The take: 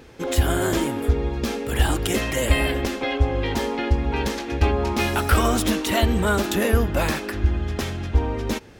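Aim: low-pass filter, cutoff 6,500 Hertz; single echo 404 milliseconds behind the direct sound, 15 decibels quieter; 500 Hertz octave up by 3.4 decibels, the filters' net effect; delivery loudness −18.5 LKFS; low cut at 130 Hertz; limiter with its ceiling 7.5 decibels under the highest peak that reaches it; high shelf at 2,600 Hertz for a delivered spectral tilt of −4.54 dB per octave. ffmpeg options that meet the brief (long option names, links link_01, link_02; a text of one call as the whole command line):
ffmpeg -i in.wav -af "highpass=130,lowpass=6500,equalizer=frequency=500:width_type=o:gain=4.5,highshelf=frequency=2600:gain=-4.5,alimiter=limit=-15dB:level=0:latency=1,aecho=1:1:404:0.178,volume=6.5dB" out.wav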